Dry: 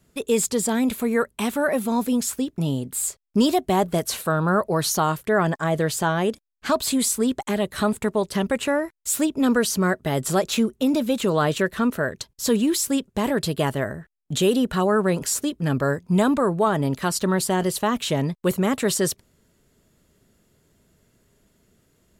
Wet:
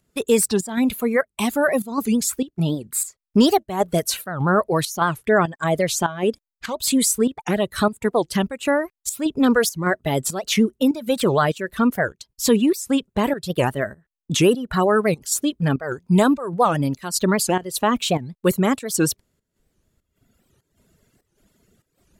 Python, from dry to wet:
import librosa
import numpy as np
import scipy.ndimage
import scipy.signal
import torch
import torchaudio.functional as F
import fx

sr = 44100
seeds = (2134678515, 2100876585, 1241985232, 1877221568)

y = fx.dereverb_blind(x, sr, rt60_s=1.7)
y = fx.volume_shaper(y, sr, bpm=99, per_beat=1, depth_db=-13, release_ms=164.0, shape='slow start')
y = fx.record_warp(y, sr, rpm=78.0, depth_cents=250.0)
y = F.gain(torch.from_numpy(y), 4.0).numpy()